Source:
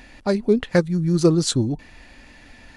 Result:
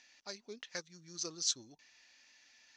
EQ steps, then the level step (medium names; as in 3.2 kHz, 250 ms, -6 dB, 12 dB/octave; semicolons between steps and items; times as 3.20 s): band-pass filter 6.1 kHz, Q 5.4; distance through air 170 m; +9.0 dB